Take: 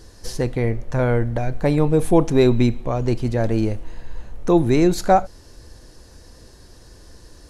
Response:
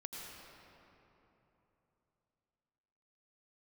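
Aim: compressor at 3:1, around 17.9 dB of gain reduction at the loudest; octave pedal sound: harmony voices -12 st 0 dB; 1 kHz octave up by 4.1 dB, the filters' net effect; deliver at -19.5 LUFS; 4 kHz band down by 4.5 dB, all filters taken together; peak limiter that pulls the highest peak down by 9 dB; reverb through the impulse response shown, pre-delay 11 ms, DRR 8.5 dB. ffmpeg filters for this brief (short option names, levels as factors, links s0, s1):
-filter_complex "[0:a]equalizer=f=1000:t=o:g=6.5,equalizer=f=4000:t=o:g=-5.5,acompressor=threshold=0.0224:ratio=3,alimiter=level_in=1.33:limit=0.0631:level=0:latency=1,volume=0.75,asplit=2[s0][s1];[1:a]atrim=start_sample=2205,adelay=11[s2];[s1][s2]afir=irnorm=-1:irlink=0,volume=0.447[s3];[s0][s3]amix=inputs=2:normalize=0,asplit=2[s4][s5];[s5]asetrate=22050,aresample=44100,atempo=2,volume=1[s6];[s4][s6]amix=inputs=2:normalize=0,volume=6.31"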